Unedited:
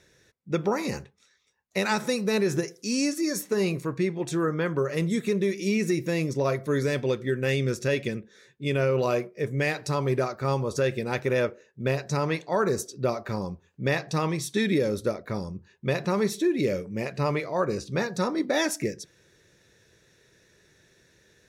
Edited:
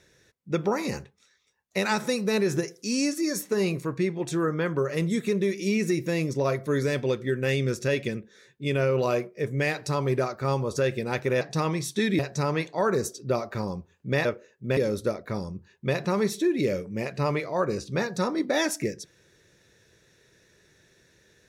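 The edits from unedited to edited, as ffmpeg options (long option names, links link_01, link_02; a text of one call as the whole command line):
ffmpeg -i in.wav -filter_complex "[0:a]asplit=5[link_01][link_02][link_03][link_04][link_05];[link_01]atrim=end=11.412[link_06];[link_02]atrim=start=13.988:end=14.772[link_07];[link_03]atrim=start=11.928:end=13.992[link_08];[link_04]atrim=start=11.408:end=11.932[link_09];[link_05]atrim=start=14.768[link_10];[link_06][link_07]acrossfade=duration=0.004:curve1=hsin:curve2=hsin[link_11];[link_11][link_08]acrossfade=duration=0.004:curve1=hsin:curve2=hsin[link_12];[link_12][link_09]acrossfade=duration=0.004:curve1=hsin:curve2=hsin[link_13];[link_13][link_10]acrossfade=duration=0.004:curve1=hsin:curve2=hsin" out.wav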